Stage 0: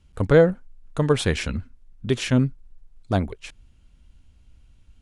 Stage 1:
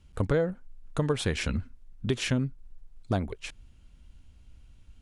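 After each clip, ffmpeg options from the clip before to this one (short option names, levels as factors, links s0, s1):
-af "acompressor=threshold=0.0631:ratio=4"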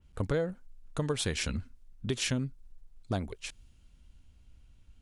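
-af "adynamicequalizer=threshold=0.00355:dfrequency=3200:dqfactor=0.7:tfrequency=3200:tqfactor=0.7:attack=5:release=100:ratio=0.375:range=4:mode=boostabove:tftype=highshelf,volume=0.596"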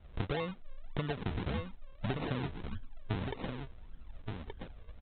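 -af "acompressor=threshold=0.0112:ratio=6,aresample=8000,acrusher=samples=10:mix=1:aa=0.000001:lfo=1:lforange=10:lforate=1.7,aresample=44100,aecho=1:1:1174:0.501,volume=2.11"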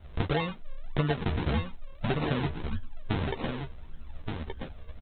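-filter_complex "[0:a]asplit=2[s0][s1];[s1]adelay=13,volume=0.531[s2];[s0][s2]amix=inputs=2:normalize=0,volume=2"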